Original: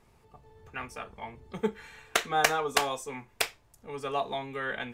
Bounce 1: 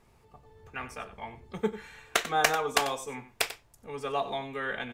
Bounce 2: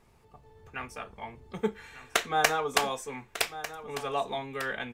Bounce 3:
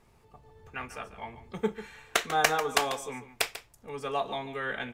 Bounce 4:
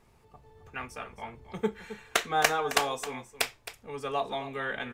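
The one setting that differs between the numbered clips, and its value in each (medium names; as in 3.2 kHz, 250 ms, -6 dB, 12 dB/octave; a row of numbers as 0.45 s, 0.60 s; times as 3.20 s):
delay, time: 93 ms, 1198 ms, 143 ms, 266 ms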